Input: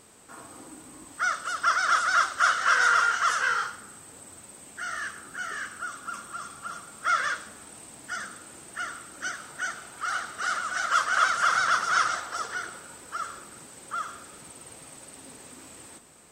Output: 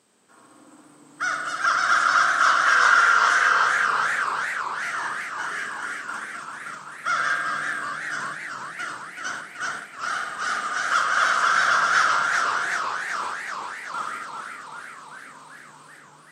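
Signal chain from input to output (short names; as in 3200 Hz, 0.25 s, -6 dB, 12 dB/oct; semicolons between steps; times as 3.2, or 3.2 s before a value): HPF 130 Hz 24 dB/oct; high shelf 3200 Hz -5.5 dB; small resonant body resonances 1600/3100 Hz, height 6 dB; on a send: darkening echo 67 ms, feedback 76%, low-pass 1900 Hz, level -4 dB; on the sum: spring tank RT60 3.8 s, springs 47 ms, chirp 60 ms, DRR 5 dB; gate -35 dBFS, range -9 dB; bell 4900 Hz +5.5 dB 1.6 oct; warbling echo 0.385 s, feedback 69%, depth 162 cents, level -6 dB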